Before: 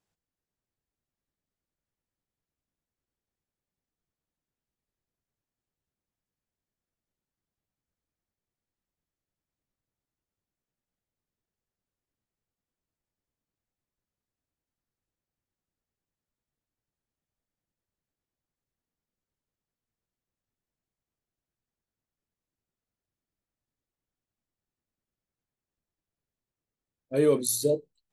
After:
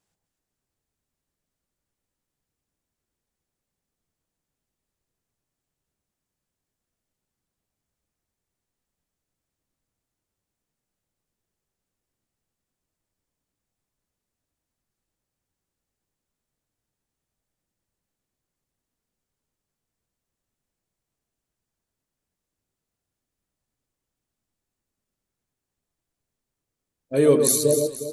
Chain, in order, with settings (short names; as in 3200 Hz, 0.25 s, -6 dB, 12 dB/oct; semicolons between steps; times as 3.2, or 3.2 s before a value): bell 8400 Hz +4.5 dB 1 oct; echo with dull and thin repeats by turns 0.12 s, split 1200 Hz, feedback 60%, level -4 dB; gain +4.5 dB